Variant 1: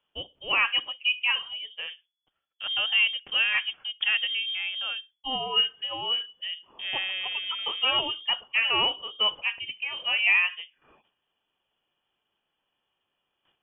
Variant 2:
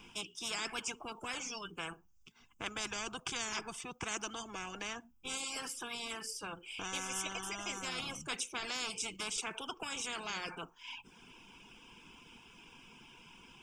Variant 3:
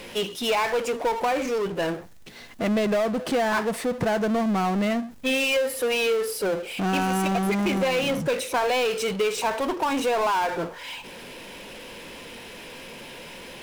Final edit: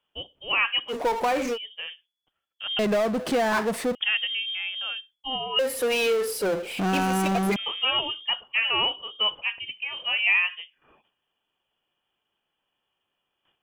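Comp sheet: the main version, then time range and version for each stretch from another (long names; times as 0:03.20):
1
0:00.91–0:01.55: punch in from 3, crossfade 0.06 s
0:02.79–0:03.95: punch in from 3
0:05.59–0:07.56: punch in from 3
not used: 2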